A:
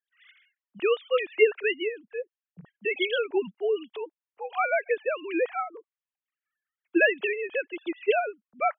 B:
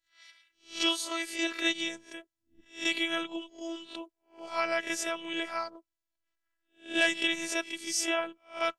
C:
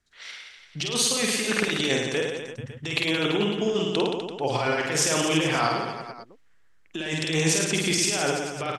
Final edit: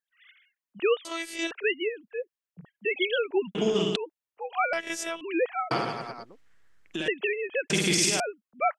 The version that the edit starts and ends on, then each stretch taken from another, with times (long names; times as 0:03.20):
A
0:01.05–0:01.51: punch in from B
0:03.55–0:03.96: punch in from C
0:04.73–0:05.21: punch in from B
0:05.71–0:07.08: punch in from C
0:07.70–0:08.20: punch in from C